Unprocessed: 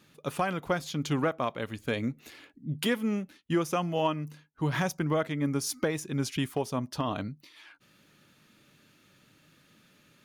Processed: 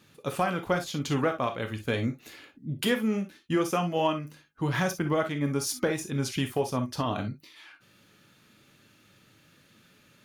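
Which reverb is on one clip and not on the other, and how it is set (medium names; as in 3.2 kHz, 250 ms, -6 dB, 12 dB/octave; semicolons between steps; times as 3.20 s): gated-style reverb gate 80 ms flat, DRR 5.5 dB; trim +1 dB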